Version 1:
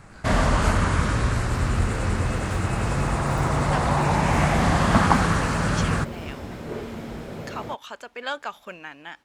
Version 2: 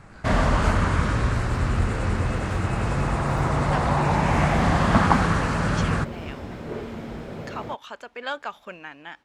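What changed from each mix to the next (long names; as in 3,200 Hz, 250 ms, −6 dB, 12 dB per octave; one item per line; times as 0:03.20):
master: add high-shelf EQ 6,500 Hz −9.5 dB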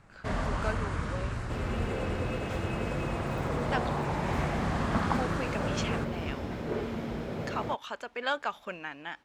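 first sound −11.0 dB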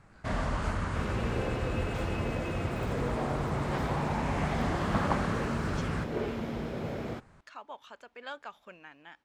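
speech −11.0 dB
second sound: entry −0.55 s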